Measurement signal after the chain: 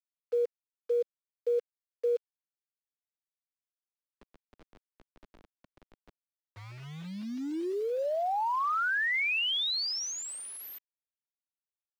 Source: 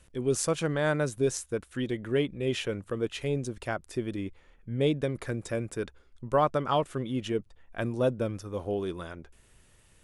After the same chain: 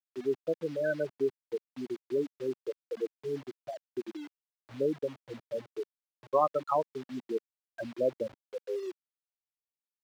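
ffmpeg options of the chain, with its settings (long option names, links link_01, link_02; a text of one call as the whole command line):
ffmpeg -i in.wav -filter_complex "[0:a]asplit=2[link_01][link_02];[link_02]acompressor=threshold=-42dB:ratio=5,volume=-2dB[link_03];[link_01][link_03]amix=inputs=2:normalize=0,afftfilt=real='re*gte(hypot(re,im),0.2)':imag='im*gte(hypot(re,im),0.2)':win_size=1024:overlap=0.75,lowshelf=frequency=350:gain=-6.5,acrusher=bits=7:mix=0:aa=0.000001,acrossover=split=220 5300:gain=0.2 1 0.178[link_04][link_05][link_06];[link_04][link_05][link_06]amix=inputs=3:normalize=0" out.wav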